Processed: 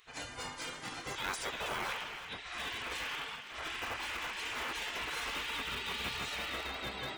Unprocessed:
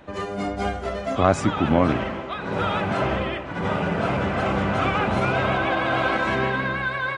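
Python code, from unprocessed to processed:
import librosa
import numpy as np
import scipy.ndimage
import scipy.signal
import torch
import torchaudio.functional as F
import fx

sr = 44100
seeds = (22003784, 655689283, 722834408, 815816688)

p1 = fx.high_shelf(x, sr, hz=4600.0, db=9.5)
p2 = fx.spec_gate(p1, sr, threshold_db=-15, keep='weak')
p3 = (np.mod(10.0 ** (27.5 / 20.0) * p2 + 1.0, 2.0) - 1.0) / 10.0 ** (27.5 / 20.0)
p4 = p2 + (p3 * librosa.db_to_amplitude(-10.0))
p5 = p4 + 10.0 ** (-12.0 / 20.0) * np.pad(p4, (int(323 * sr / 1000.0), 0))[:len(p4)]
y = p5 * librosa.db_to_amplitude(-7.0)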